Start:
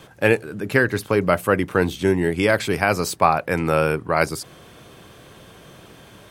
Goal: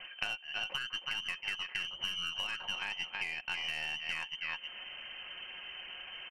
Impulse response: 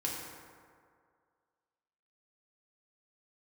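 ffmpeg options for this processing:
-af "lowpass=f=2.7k:t=q:w=0.5098,lowpass=f=2.7k:t=q:w=0.6013,lowpass=f=2.7k:t=q:w=0.9,lowpass=f=2.7k:t=q:w=2.563,afreqshift=-3200,aecho=1:1:318:0.316,alimiter=limit=-9.5dB:level=0:latency=1:release=149,aeval=exprs='0.335*(cos(1*acos(clip(val(0)/0.335,-1,1)))-cos(1*PI/2))+0.0188*(cos(3*acos(clip(val(0)/0.335,-1,1)))-cos(3*PI/2))+0.0299*(cos(4*acos(clip(val(0)/0.335,-1,1)))-cos(4*PI/2))+0.00668*(cos(6*acos(clip(val(0)/0.335,-1,1)))-cos(6*PI/2))':c=same,aecho=1:1:5.5:0.43,acompressor=threshold=-34dB:ratio=12"

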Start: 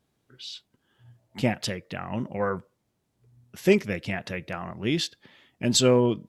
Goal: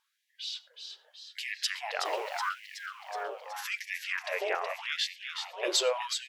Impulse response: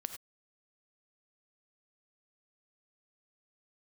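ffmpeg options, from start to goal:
-filter_complex "[0:a]asettb=1/sr,asplit=3[a][b][c];[a]atrim=end=2.054[d];[b]atrim=start=2.05:end=2.49,asetpts=PTS-STARTPTS,afade=t=in:d=0.004:c=qsin,afade=t=out:st=0.436:d=0.004:c=qsin,aeval=exprs='val(0)+0.5*0.0126*sgn(val(0))':c=same[e];[c]atrim=start=2.486[f];[d][e]acrossfade=d=0.004:c1=hsin:c2=qsin[g];[g][f]acrossfade=d=0.004:c1=qsin:c2=hsin,equalizer=f=8.7k:w=4:g=-2.5,alimiter=limit=-16.5dB:level=0:latency=1:release=103,asettb=1/sr,asplit=3[h][i][j];[h]atrim=end=3.944[k];[i]atrim=start=3.94:end=5.63,asetpts=PTS-STARTPTS,afade=t=in:d=0.004:c=qsin,afade=t=out:st=1.686:d=0.004:c=qsin,bass=f=250:g=-4,treble=f=4k:g=-6[l];[j]atrim=start=5.626[m];[k][l]acrossfade=d=0.004:c1=hsin:c2=qsin[n];[n][m]acrossfade=d=0.004:c1=qsin:c2=hsin,asplit=9[o][p][q][r][s][t][u][v][w];[p]adelay=372,afreqshift=110,volume=-6.5dB[x];[q]adelay=744,afreqshift=220,volume=-10.9dB[y];[r]adelay=1116,afreqshift=330,volume=-15.4dB[z];[s]adelay=1488,afreqshift=440,volume=-19.8dB[aa];[t]adelay=1860,afreqshift=550,volume=-24.2dB[ab];[u]adelay=2232,afreqshift=660,volume=-28.7dB[ac];[v]adelay=2604,afreqshift=770,volume=-33.1dB[ad];[w]adelay=2976,afreqshift=880,volume=-37.6dB[ae];[o][x][y][z][aa][ab][ac][ad][ae]amix=inputs=9:normalize=0,asplit=2[af][ag];[1:a]atrim=start_sample=2205,lowpass=6.8k[ah];[ag][ah]afir=irnorm=-1:irlink=0,volume=-9dB[ai];[af][ai]amix=inputs=2:normalize=0,afftfilt=real='re*gte(b*sr/1024,340*pow(1700/340,0.5+0.5*sin(2*PI*0.83*pts/sr)))':imag='im*gte(b*sr/1024,340*pow(1700/340,0.5+0.5*sin(2*PI*0.83*pts/sr)))':win_size=1024:overlap=0.75"

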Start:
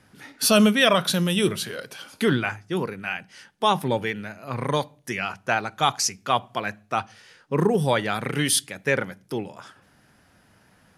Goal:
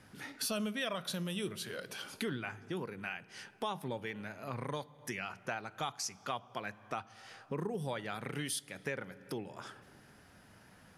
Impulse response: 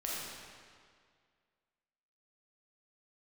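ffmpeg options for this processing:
-filter_complex "[0:a]asplit=2[a][b];[1:a]atrim=start_sample=2205,highshelf=f=3.5k:g=-8.5[c];[b][c]afir=irnorm=-1:irlink=0,volume=-24dB[d];[a][d]amix=inputs=2:normalize=0,acompressor=threshold=-38dB:ratio=3,volume=-2dB"

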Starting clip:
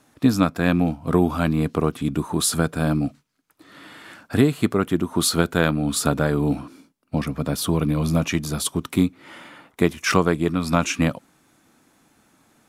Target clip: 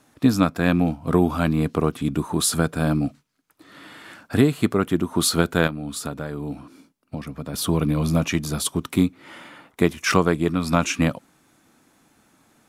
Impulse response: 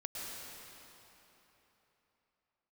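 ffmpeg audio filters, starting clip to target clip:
-filter_complex "[0:a]asettb=1/sr,asplit=3[a][b][c];[a]atrim=end=5.674[d];[b]atrim=start=5.67:end=7.54,asetpts=PTS-STARTPTS,afade=t=in:d=0.004:c=qsin,afade=t=out:st=1.866:d=0.004:c=qsin,acompressor=threshold=-34dB:ratio=2[e];[c]atrim=start=7.536[f];[d][e]acrossfade=d=0.004:c1=hsin:c2=qsin[g];[g][f]acrossfade=d=0.004:c1=qsin:c2=hsin"

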